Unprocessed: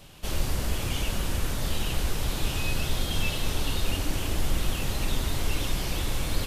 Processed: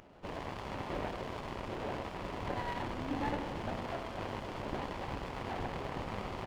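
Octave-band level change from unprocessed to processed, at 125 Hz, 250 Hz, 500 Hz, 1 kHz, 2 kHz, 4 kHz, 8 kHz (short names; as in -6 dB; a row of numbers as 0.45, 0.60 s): -13.0, -5.5, -2.5, 0.0, -8.5, -16.5, -25.0 dB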